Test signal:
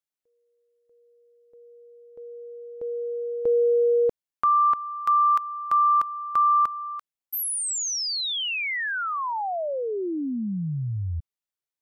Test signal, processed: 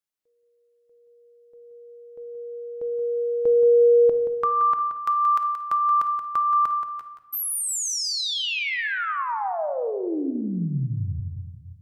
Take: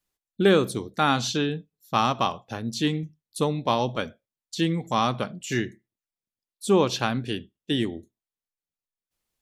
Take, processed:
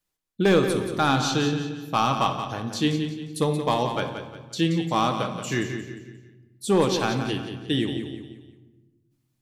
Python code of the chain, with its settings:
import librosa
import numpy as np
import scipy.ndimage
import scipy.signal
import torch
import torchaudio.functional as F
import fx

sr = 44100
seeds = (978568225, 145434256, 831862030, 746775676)

p1 = np.clip(10.0 ** (12.5 / 20.0) * x, -1.0, 1.0) / 10.0 ** (12.5 / 20.0)
p2 = p1 + fx.echo_feedback(p1, sr, ms=177, feedback_pct=38, wet_db=-9, dry=0)
y = fx.room_shoebox(p2, sr, seeds[0], volume_m3=790.0, walls='mixed', distance_m=0.57)